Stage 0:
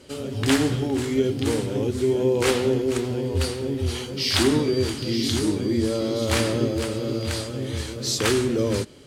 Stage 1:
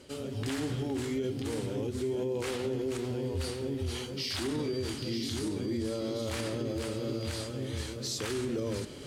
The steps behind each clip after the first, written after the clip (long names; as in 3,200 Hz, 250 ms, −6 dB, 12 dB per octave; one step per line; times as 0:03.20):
reversed playback
upward compression, threshold −27 dBFS
reversed playback
brickwall limiter −18 dBFS, peak gain reduction 9.5 dB
level −7 dB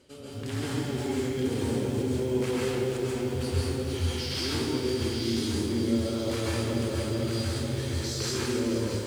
automatic gain control gain up to 5.5 dB
dense smooth reverb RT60 0.78 s, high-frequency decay 0.85×, pre-delay 120 ms, DRR −4 dB
feedback echo at a low word length 213 ms, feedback 80%, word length 7 bits, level −10 dB
level −7 dB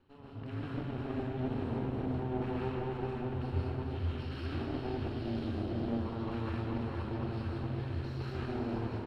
lower of the sound and its delayed copy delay 0.73 ms
high-frequency loss of the air 430 metres
single-tap delay 411 ms −8 dB
level −5.5 dB